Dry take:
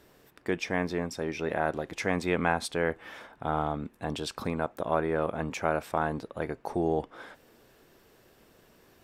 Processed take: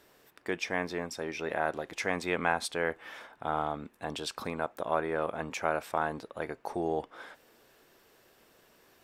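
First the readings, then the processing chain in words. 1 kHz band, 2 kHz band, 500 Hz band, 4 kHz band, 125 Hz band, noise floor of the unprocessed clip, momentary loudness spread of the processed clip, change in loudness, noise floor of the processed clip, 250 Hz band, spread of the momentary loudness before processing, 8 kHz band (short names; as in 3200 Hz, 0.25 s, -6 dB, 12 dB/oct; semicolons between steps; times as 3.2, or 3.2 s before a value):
-1.5 dB, -0.5 dB, -3.0 dB, 0.0 dB, -8.0 dB, -61 dBFS, 9 LU, -2.5 dB, -64 dBFS, -6.0 dB, 8 LU, 0.0 dB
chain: low shelf 320 Hz -10 dB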